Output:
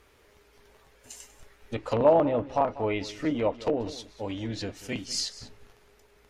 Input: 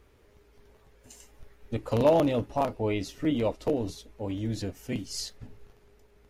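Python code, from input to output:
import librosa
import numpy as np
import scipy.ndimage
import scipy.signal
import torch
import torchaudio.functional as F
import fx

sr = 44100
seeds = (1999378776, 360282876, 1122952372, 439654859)

p1 = fx.env_lowpass_down(x, sr, base_hz=1300.0, full_db=-21.5)
p2 = fx.low_shelf(p1, sr, hz=480.0, db=-11.0)
p3 = p2 + fx.echo_single(p2, sr, ms=193, db=-16.5, dry=0)
y = p3 * 10.0 ** (6.5 / 20.0)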